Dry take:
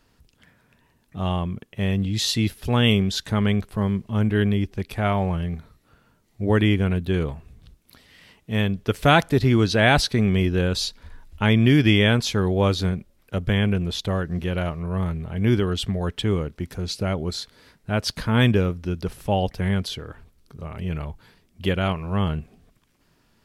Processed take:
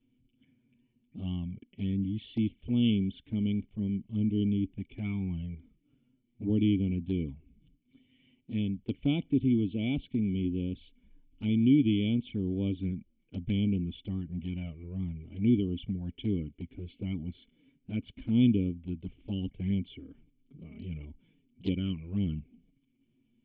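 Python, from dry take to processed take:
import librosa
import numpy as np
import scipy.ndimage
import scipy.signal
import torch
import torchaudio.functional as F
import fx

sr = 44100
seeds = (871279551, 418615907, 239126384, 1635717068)

y = fx.formant_cascade(x, sr, vowel='i')
y = fx.env_flanger(y, sr, rest_ms=8.5, full_db=-27.0)
y = fx.rider(y, sr, range_db=3, speed_s=2.0)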